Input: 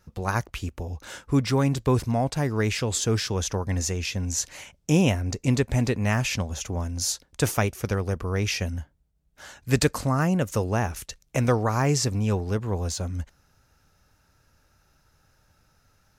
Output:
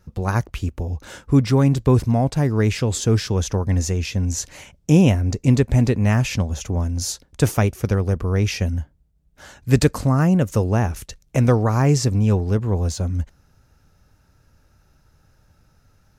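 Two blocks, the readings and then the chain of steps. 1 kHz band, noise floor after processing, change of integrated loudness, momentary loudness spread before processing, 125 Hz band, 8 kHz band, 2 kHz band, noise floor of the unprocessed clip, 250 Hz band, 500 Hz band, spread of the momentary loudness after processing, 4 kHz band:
+2.0 dB, −59 dBFS, +6.0 dB, 10 LU, +7.5 dB, 0.0 dB, +0.5 dB, −66 dBFS, +6.5 dB, +4.5 dB, 11 LU, 0.0 dB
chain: low-shelf EQ 500 Hz +8 dB

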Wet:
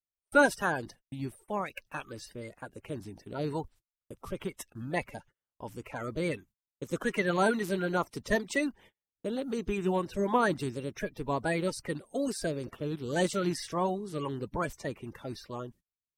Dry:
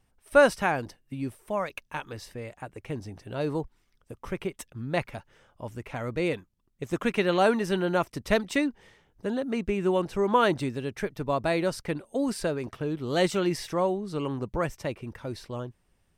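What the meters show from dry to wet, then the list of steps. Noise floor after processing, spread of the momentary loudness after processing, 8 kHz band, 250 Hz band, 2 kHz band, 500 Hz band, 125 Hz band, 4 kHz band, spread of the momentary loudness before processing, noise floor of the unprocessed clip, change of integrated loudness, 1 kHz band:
below −85 dBFS, 16 LU, 0.0 dB, −3.5 dB, −1.5 dB, −5.5 dB, −3.5 dB, −5.0 dB, 16 LU, −69 dBFS, −4.0 dB, −3.0 dB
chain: spectral magnitudes quantised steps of 30 dB
noise gate −50 dBFS, range −36 dB
high-shelf EQ 6,300 Hz +5.5 dB
level −3.5 dB

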